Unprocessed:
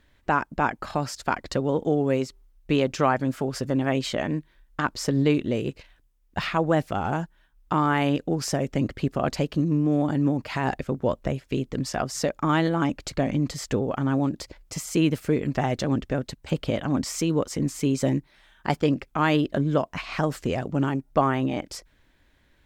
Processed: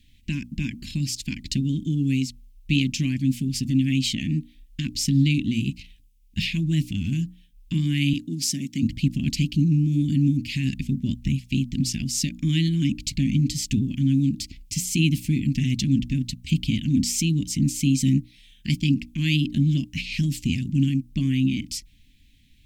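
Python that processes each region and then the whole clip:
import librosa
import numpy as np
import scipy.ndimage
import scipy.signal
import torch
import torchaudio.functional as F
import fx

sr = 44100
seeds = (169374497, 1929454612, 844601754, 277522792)

y = fx.chain(x, sr, fx.highpass(hz=240.0, slope=12),
    fx.peak_eq(hz=2600.0, db=-5.5, octaves=0.44), at=(8.13, 8.83))
y = scipy.signal.sosfilt(scipy.signal.ellip(3, 1.0, 40, [250.0, 2500.0], 'bandstop', fs=sr, output='sos'), y)
y = fx.hum_notches(y, sr, base_hz=60, count=5)
y = fx.dynamic_eq(y, sr, hz=1100.0, q=0.77, threshold_db=-49.0, ratio=4.0, max_db=-4)
y = y * librosa.db_to_amplitude(7.5)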